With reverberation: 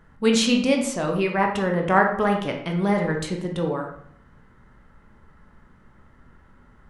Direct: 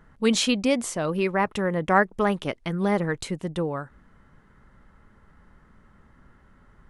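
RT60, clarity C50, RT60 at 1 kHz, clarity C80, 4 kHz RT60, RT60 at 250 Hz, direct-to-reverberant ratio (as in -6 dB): 0.70 s, 6.0 dB, 0.65 s, 10.0 dB, 0.50 s, 0.70 s, 1.5 dB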